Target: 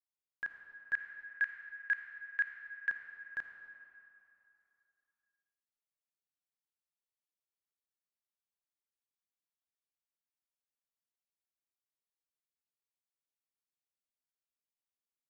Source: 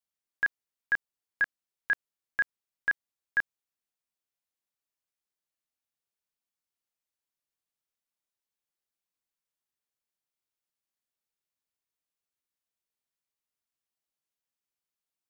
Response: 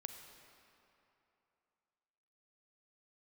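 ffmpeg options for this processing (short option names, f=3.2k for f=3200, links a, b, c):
-filter_complex "[0:a]asettb=1/sr,asplit=3[a][b][c];[a]atrim=end=0.934[d];[b]atrim=start=0.93:end=2.9,asetpts=PTS-STARTPTS,afade=t=in:d=0.004:c=qsin,afade=t=out:st=1.966:d=0.004:c=qsin,equalizer=f=125:t=o:w=1:g=-6,equalizer=f=250:t=o:w=1:g=-8,equalizer=f=500:t=o:w=1:g=-7,equalizer=f=1k:t=o:w=1:g=-4,equalizer=f=2k:t=o:w=1:g=11[e];[c]atrim=start=2.896[f];[d][e]acrossfade=d=0.004:c1=hsin:c2=qsin[g];[g][f]acrossfade=d=0.004:c1=qsin:c2=hsin[h];[1:a]atrim=start_sample=2205[i];[h][i]afir=irnorm=-1:irlink=0,volume=-7.5dB"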